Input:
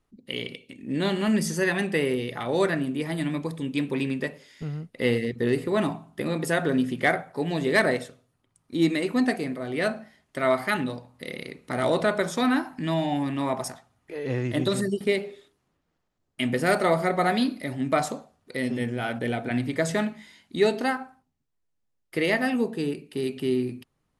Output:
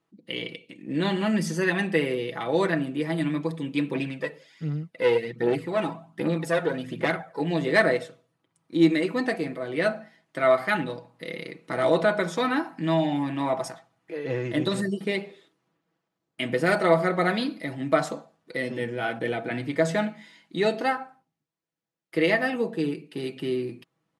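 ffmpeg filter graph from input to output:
ffmpeg -i in.wav -filter_complex "[0:a]asettb=1/sr,asplit=3[link_01][link_02][link_03];[link_01]atrim=end=3.954[link_04];[link_02]atrim=start=3.95:end=7.4,asetpts=PTS-STARTPTS,afade=type=in:duration=0.004:curve=qsin,afade=type=out:start_time=3.446:duration=0.004:curve=qsin,aphaser=in_gain=1:out_gain=1:delay=2.4:decay=0.52:speed=1.3:type=triangular,aeval=exprs='(tanh(5.01*val(0)+0.55)-tanh(0.55))/5.01':channel_layout=same[link_05];[link_03]atrim=start=7.396[link_06];[link_04][link_05]acrossfade=duration=0.004:curve1=hsin:curve2=qsin[link_07];[link_07][link_06]acrossfade=duration=0.004:curve1=qsin:curve2=hsin,highpass=160,highshelf=frequency=7600:gain=-12,aecho=1:1:6.1:0.57" out.wav

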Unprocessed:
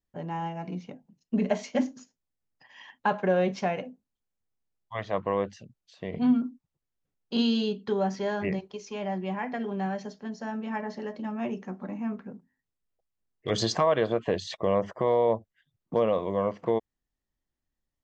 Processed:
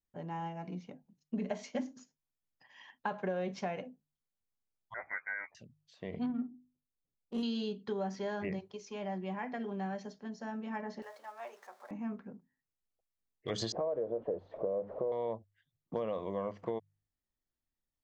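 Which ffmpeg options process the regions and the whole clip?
ffmpeg -i in.wav -filter_complex "[0:a]asettb=1/sr,asplit=3[link_01][link_02][link_03];[link_01]atrim=end=4.944[link_04];[link_02]atrim=start=4.94:end=5.55,asetpts=PTS-STARTPTS,afade=type=in:duration=0.004:curve=qsin,afade=type=out:start_time=0.606:duration=0.004:curve=qsin,highpass=770,asplit=2[link_05][link_06];[link_06]adelay=13,volume=-5dB[link_07];[link_05][link_07]amix=inputs=2:normalize=0,atrim=end_sample=26901,lowpass=frequency=2200:width_type=q:width=0.5098,lowpass=frequency=2200:width_type=q:width=0.6013,lowpass=frequency=2200:width_type=q:width=0.9,lowpass=frequency=2200:width_type=q:width=2.563,afreqshift=-2600[link_08];[link_03]atrim=start=5.546[link_09];[link_04][link_08]acrossfade=duration=0.004:curve1=hsin:curve2=qsin[link_10];[link_10][link_09]acrossfade=duration=0.004:curve1=qsin:curve2=hsin,asettb=1/sr,asplit=3[link_11][link_12][link_13];[link_11]atrim=end=6.264[link_14];[link_12]atrim=start=6.26:end=7.43,asetpts=PTS-STARTPTS,afade=type=in:duration=0.004:curve=qsin,afade=type=out:start_time=1.166:duration=0.004:curve=qsin,bandreject=frequency=50:width_type=h:width=6,bandreject=frequency=100:width_type=h:width=6,bandreject=frequency=150:width_type=h:width=6,bandreject=frequency=200:width_type=h:width=6,bandreject=frequency=250:width_type=h:width=6,bandreject=frequency=300:width_type=h:width=6,bandreject=frequency=350:width_type=h:width=6,bandreject=frequency=400:width_type=h:width=6,adynamicsmooth=sensitivity=2:basefreq=830[link_15];[link_13]atrim=start=7.426[link_16];[link_14][link_15]acrossfade=duration=0.004:curve1=hsin:curve2=qsin[link_17];[link_17][link_16]acrossfade=duration=0.004:curve1=qsin:curve2=hsin,asettb=1/sr,asplit=3[link_18][link_19][link_20];[link_18]atrim=end=11.024[link_21];[link_19]atrim=start=11.02:end=11.91,asetpts=PTS-STARTPTS,afade=type=in:duration=0.004:curve=qsin,afade=type=out:start_time=0.886:duration=0.004:curve=qsin,aeval=exprs='val(0)+0.5*0.00422*sgn(val(0))':channel_layout=same,highpass=frequency=600:width=0.5412,highpass=frequency=600:width=1.3066,equalizer=frequency=2800:width_type=o:width=0.54:gain=-6.5[link_22];[link_20]atrim=start=11.906[link_23];[link_21][link_22]acrossfade=duration=0.004:curve1=hsin:curve2=qsin[link_24];[link_24][link_23]acrossfade=duration=0.004:curve1=qsin:curve2=hsin,asettb=1/sr,asplit=3[link_25][link_26][link_27];[link_25]atrim=end=13.724[link_28];[link_26]atrim=start=13.72:end=15.12,asetpts=PTS-STARTPTS,afade=type=in:duration=0.004:curve=qsin,afade=type=out:start_time=1.396:duration=0.004:curve=qsin,aeval=exprs='val(0)+0.5*0.0282*sgn(val(0))':channel_layout=same,lowpass=frequency=520:width_type=q:width=2.5,lowshelf=frequency=390:gain=-9[link_29];[link_27]atrim=start=15.116[link_30];[link_28][link_29]acrossfade=duration=0.004:curve1=hsin:curve2=qsin[link_31];[link_31][link_30]acrossfade=duration=0.004:curve1=qsin:curve2=hsin,bandreject=frequency=50.22:width_type=h:width=4,bandreject=frequency=100.44:width_type=h:width=4,bandreject=frequency=150.66:width_type=h:width=4,acompressor=threshold=-25dB:ratio=6,equalizer=frequency=2700:width=7.8:gain=-2,volume=-6.5dB" out.wav

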